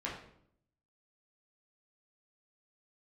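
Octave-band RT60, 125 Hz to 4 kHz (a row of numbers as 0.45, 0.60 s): 0.95, 0.90, 0.75, 0.60, 0.55, 0.50 s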